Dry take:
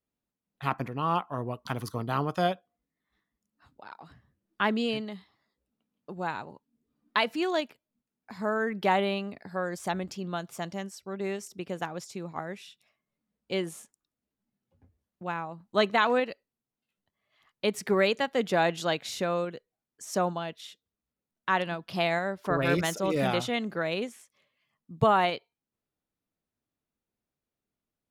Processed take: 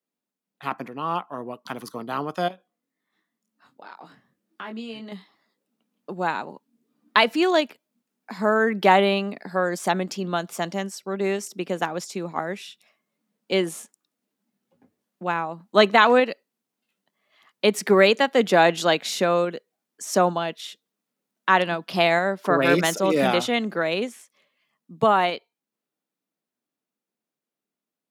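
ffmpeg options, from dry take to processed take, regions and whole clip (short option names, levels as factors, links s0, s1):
-filter_complex "[0:a]asettb=1/sr,asplit=3[s0][s1][s2];[s0]atrim=end=2.484[s3];[s1]atrim=start=2.48:end=5.12,asetpts=PTS-STARTPTS,afade=t=in:d=0.004:c=qsin,afade=t=out:st=2.636:d=0.004:c=qsin,acompressor=threshold=0.00891:ratio=4:attack=3.2:release=140:knee=1:detection=peak,asplit=2[s4][s5];[s5]adelay=22,volume=0.596[s6];[s4][s6]amix=inputs=2:normalize=0,atrim=end_sample=116424[s7];[s2]atrim=start=5.116[s8];[s3][s7]acrossfade=d=0.004:c1=hsin:c2=qsin[s9];[s9][s8]acrossfade=d=0.004:c1=qsin:c2=hsin,highpass=f=180:w=0.5412,highpass=f=180:w=1.3066,dynaudnorm=f=560:g=17:m=2.99,volume=1.12"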